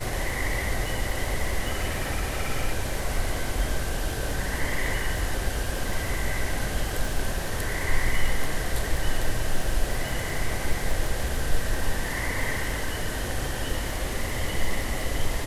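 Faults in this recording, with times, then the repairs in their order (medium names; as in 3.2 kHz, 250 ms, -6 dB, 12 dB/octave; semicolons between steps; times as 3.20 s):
crackle 41 per s -31 dBFS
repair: de-click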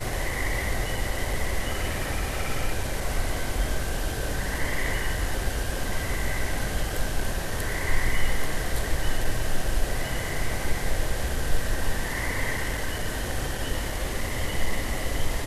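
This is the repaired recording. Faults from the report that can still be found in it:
nothing left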